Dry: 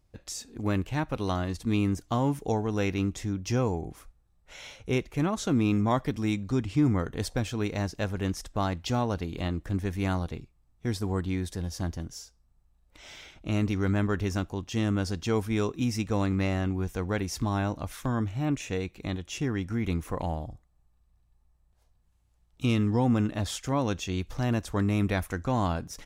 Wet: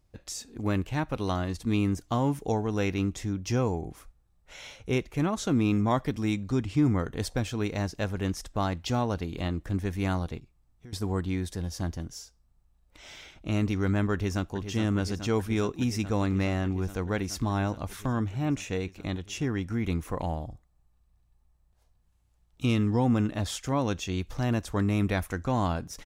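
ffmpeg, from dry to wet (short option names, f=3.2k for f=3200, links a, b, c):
-filter_complex "[0:a]asettb=1/sr,asplit=3[a][b][c];[a]atrim=end=10.384[d];[b]atrim=start=10.38:end=10.93,asetpts=PTS-STARTPTS,afade=t=in:d=0.004:c=qsin,afade=t=out:st=0.546:d=0.004:c=qsin,acompressor=threshold=-45dB:ratio=5:attack=3.2:release=140:knee=1:detection=peak[e];[c]atrim=start=10.926[f];[d][e]acrossfade=d=0.004:c1=hsin:c2=qsin[g];[g][f]acrossfade=d=0.004:c1=qsin:c2=hsin,asplit=2[h][i];[i]afade=t=in:st=14.13:d=0.01,afade=t=out:st=14.57:d=0.01,aecho=0:1:420|840|1260|1680|2100|2520|2940|3360|3780|4200|4620|5040:0.354813|0.301591|0.256353|0.2179|0.185215|0.157433|0.133818|0.113745|0.0966833|0.0821808|0.0698537|0.0593756[j];[h][j]amix=inputs=2:normalize=0"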